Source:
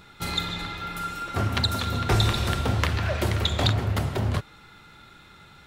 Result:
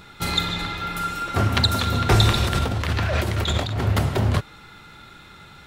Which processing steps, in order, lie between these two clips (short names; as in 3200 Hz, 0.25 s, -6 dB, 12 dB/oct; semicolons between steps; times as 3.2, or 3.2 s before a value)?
2.44–3.81 negative-ratio compressor -28 dBFS, ratio -1; gain +5 dB